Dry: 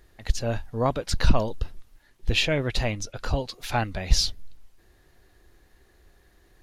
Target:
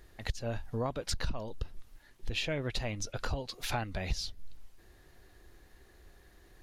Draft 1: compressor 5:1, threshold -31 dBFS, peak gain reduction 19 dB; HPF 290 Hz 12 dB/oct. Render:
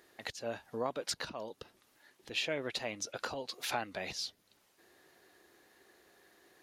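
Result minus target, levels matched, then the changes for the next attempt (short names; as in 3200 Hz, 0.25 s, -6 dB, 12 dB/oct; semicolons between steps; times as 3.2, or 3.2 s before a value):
250 Hz band -3.0 dB
remove: HPF 290 Hz 12 dB/oct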